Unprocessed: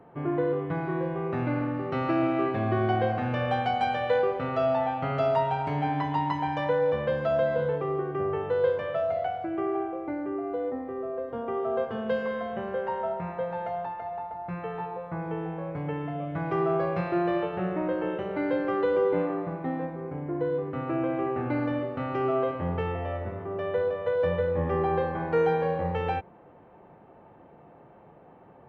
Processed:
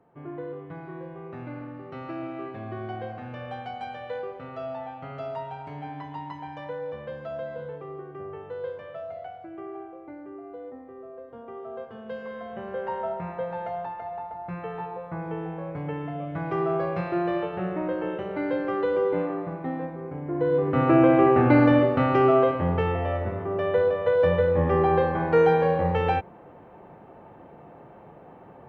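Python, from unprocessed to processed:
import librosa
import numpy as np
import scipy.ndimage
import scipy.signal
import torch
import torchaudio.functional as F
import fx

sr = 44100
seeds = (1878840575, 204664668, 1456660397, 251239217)

y = fx.gain(x, sr, db=fx.line((12.02, -9.5), (12.92, 0.0), (20.22, 0.0), (20.82, 11.0), (21.84, 11.0), (22.67, 5.0)))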